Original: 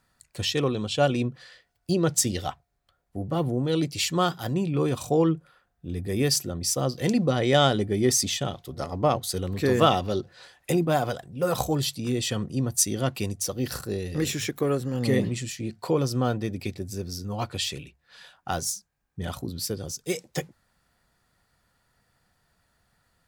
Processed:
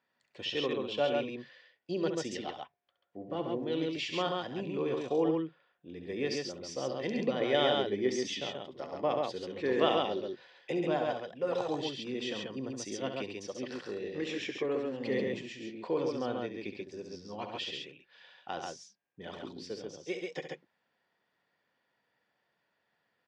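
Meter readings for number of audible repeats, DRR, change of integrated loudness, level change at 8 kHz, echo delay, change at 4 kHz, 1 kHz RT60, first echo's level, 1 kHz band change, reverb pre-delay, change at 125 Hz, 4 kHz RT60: 2, no reverb audible, −8.0 dB, −20.0 dB, 68 ms, −7.5 dB, no reverb audible, −8.5 dB, −8.0 dB, no reverb audible, −18.0 dB, no reverb audible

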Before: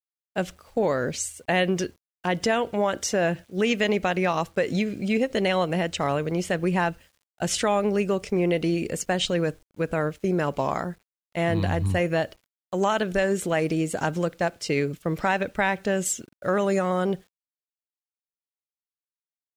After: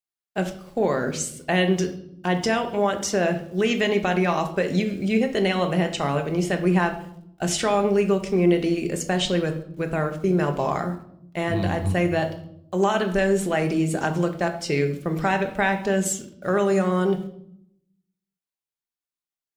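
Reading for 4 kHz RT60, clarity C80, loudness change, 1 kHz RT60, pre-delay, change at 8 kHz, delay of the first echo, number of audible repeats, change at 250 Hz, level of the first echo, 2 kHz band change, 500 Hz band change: 0.55 s, 14.5 dB, +2.0 dB, 0.60 s, 3 ms, +1.0 dB, no echo audible, no echo audible, +3.5 dB, no echo audible, +1.0 dB, +2.0 dB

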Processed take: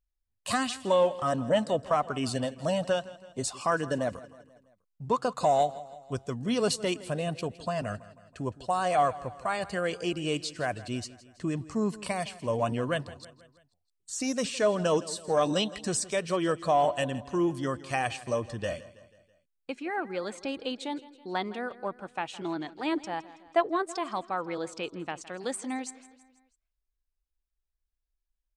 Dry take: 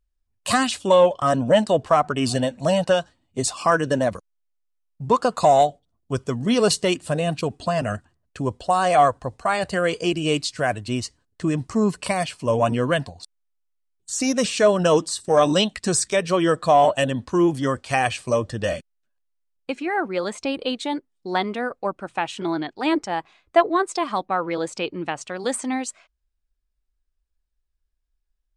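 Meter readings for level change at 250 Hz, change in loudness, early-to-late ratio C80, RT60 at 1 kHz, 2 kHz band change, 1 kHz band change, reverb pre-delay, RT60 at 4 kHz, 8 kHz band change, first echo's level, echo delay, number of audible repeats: −8.5 dB, −8.5 dB, no reverb audible, no reverb audible, −8.5 dB, −8.5 dB, no reverb audible, no reverb audible, −8.5 dB, −18.0 dB, 163 ms, 4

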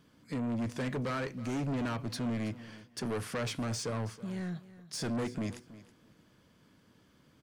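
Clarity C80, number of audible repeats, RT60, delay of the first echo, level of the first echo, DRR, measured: no reverb audible, 2, no reverb audible, 323 ms, −17.0 dB, no reverb audible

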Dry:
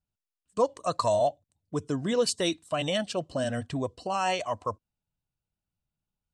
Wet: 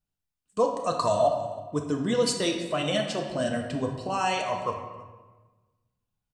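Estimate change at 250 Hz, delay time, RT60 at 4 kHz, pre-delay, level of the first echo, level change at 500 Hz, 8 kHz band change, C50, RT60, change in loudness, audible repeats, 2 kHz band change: +2.5 dB, 322 ms, 0.95 s, 3 ms, −20.5 dB, +1.5 dB, +1.0 dB, 5.0 dB, 1.3 s, +1.5 dB, 1, +2.5 dB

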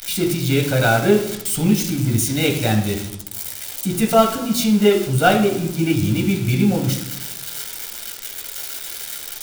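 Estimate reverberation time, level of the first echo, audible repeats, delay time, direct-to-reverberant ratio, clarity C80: 0.85 s, no echo audible, no echo audible, no echo audible, 1.0 dB, 10.5 dB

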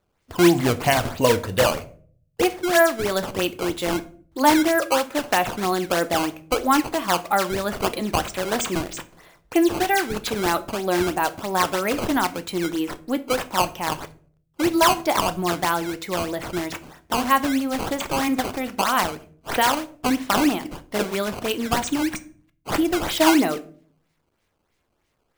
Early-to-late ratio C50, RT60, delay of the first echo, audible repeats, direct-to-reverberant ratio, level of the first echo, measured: 18.0 dB, 0.50 s, no echo audible, no echo audible, 11.0 dB, no echo audible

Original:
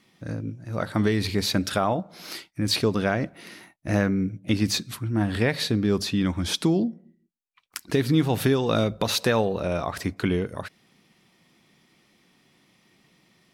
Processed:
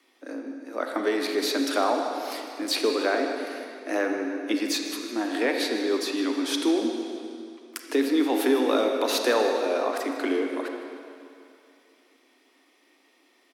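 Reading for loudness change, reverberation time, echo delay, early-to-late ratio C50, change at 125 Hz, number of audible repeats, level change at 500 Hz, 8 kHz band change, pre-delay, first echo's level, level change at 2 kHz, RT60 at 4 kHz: −1.0 dB, 2.5 s, 155 ms, 3.0 dB, below −30 dB, 1, +2.0 dB, −1.0 dB, 32 ms, −14.0 dB, +0.5 dB, 2.3 s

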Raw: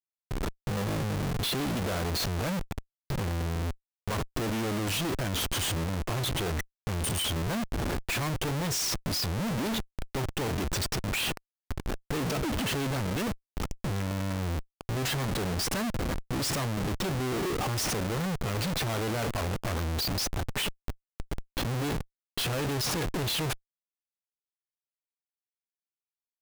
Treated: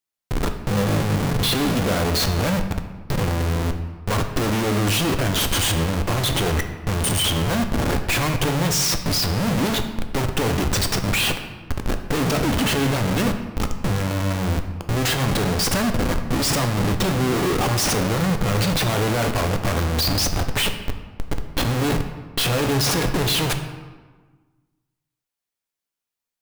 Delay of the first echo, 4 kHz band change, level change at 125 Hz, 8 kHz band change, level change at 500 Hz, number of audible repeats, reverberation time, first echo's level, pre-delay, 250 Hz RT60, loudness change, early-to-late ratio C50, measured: no echo audible, +9.0 dB, +9.5 dB, +9.0 dB, +9.5 dB, no echo audible, 1.4 s, no echo audible, 4 ms, 1.8 s, +9.5 dB, 9.0 dB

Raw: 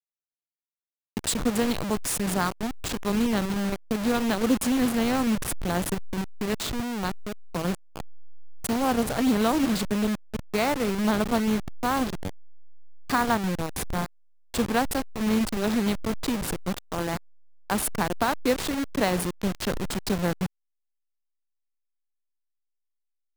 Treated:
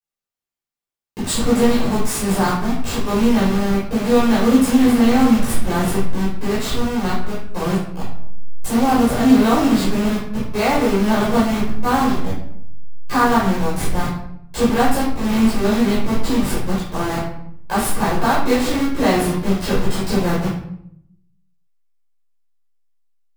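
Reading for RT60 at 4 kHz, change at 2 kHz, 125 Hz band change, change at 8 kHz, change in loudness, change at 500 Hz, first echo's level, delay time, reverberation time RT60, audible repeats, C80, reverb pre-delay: 0.50 s, +6.5 dB, +9.0 dB, +4.0 dB, +8.5 dB, +8.5 dB, no echo audible, no echo audible, 0.70 s, no echo audible, 6.5 dB, 11 ms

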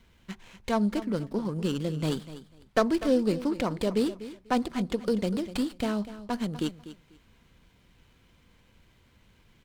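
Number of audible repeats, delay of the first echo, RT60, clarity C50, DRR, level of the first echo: 2, 246 ms, no reverb audible, no reverb audible, no reverb audible, −14.5 dB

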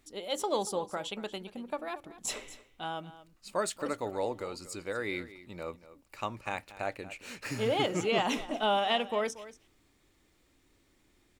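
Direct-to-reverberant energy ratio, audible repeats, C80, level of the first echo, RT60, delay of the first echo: no reverb audible, 1, no reverb audible, −16.0 dB, no reverb audible, 233 ms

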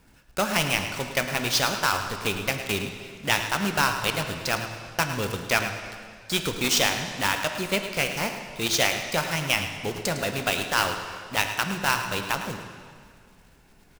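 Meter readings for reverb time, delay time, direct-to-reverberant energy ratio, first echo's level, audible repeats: 2.0 s, 107 ms, 5.0 dB, −11.0 dB, 1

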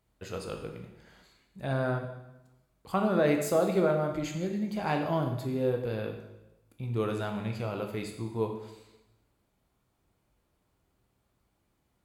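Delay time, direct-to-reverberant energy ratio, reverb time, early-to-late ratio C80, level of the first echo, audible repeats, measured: no echo audible, 3.0 dB, 0.95 s, 9.0 dB, no echo audible, no echo audible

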